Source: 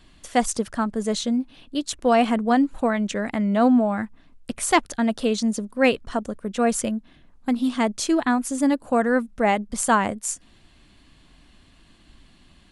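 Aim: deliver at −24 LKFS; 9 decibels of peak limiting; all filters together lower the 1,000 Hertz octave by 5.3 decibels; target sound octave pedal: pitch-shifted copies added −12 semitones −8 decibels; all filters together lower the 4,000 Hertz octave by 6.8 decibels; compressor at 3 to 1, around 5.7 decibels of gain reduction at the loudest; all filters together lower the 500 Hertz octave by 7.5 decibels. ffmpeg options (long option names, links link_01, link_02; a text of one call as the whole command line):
ffmpeg -i in.wav -filter_complex "[0:a]equalizer=frequency=500:width_type=o:gain=-8.5,equalizer=frequency=1000:width_type=o:gain=-3,equalizer=frequency=4000:width_type=o:gain=-9,acompressor=threshold=-24dB:ratio=3,alimiter=limit=-22dB:level=0:latency=1,asplit=2[link_01][link_02];[link_02]asetrate=22050,aresample=44100,atempo=2,volume=-8dB[link_03];[link_01][link_03]amix=inputs=2:normalize=0,volume=7dB" out.wav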